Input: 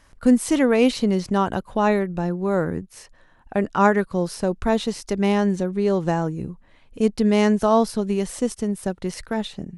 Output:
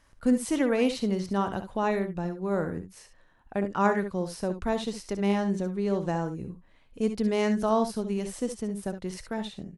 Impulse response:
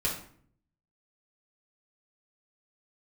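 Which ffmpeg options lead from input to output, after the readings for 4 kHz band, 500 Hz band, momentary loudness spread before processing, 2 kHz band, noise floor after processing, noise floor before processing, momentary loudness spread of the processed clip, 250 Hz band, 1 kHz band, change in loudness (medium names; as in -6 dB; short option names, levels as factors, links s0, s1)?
-7.0 dB, -7.0 dB, 10 LU, -7.0 dB, -59 dBFS, -55 dBFS, 10 LU, -7.0 dB, -7.0 dB, -7.0 dB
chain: -af "aecho=1:1:60|70:0.211|0.282,volume=0.422"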